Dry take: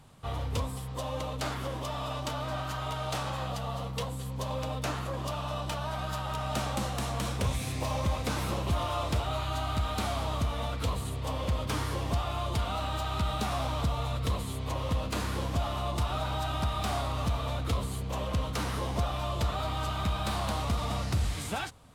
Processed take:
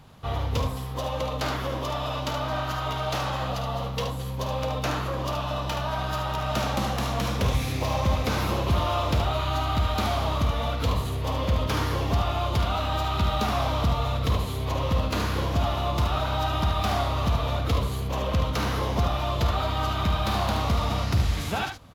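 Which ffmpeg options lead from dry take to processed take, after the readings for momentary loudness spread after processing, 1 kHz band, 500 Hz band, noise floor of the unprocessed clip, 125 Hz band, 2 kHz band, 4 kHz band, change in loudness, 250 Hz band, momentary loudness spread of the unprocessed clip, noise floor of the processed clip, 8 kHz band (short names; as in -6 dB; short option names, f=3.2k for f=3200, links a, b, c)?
4 LU, +6.0 dB, +6.0 dB, -37 dBFS, +5.5 dB, +6.0 dB, +5.5 dB, +6.0 dB, +5.5 dB, 4 LU, -31 dBFS, +1.5 dB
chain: -af "equalizer=f=8.6k:t=o:w=0.35:g=-14.5,aecho=1:1:51|74:0.282|0.447,volume=5dB"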